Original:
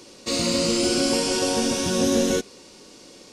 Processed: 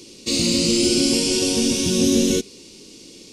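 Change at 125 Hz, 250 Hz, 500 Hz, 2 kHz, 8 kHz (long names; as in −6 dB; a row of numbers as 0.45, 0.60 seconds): +4.5, +4.5, +0.5, +0.5, +4.5 decibels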